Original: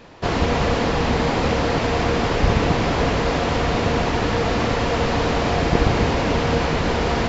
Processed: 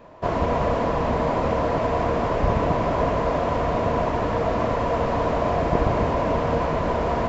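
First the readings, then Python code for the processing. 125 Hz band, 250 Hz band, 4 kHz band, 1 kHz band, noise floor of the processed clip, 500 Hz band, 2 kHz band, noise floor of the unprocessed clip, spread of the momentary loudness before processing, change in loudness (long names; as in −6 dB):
−4.5 dB, −4.5 dB, −13.0 dB, −0.5 dB, −25 dBFS, −0.5 dB, −8.0 dB, −22 dBFS, 2 LU, −2.5 dB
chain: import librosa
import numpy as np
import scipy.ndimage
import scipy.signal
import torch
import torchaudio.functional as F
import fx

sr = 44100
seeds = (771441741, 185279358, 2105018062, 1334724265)

y = fx.peak_eq(x, sr, hz=4700.0, db=-10.5, octaves=2.0)
y = fx.small_body(y, sr, hz=(630.0, 1000.0), ring_ms=30, db=11)
y = F.gain(torch.from_numpy(y), -4.5).numpy()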